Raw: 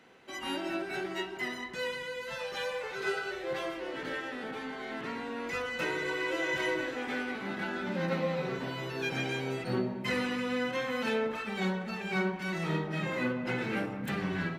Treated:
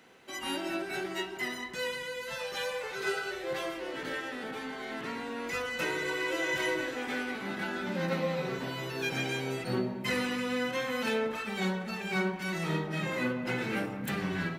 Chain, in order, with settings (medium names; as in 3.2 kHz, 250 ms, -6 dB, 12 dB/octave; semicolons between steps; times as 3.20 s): treble shelf 6.3 kHz +9.5 dB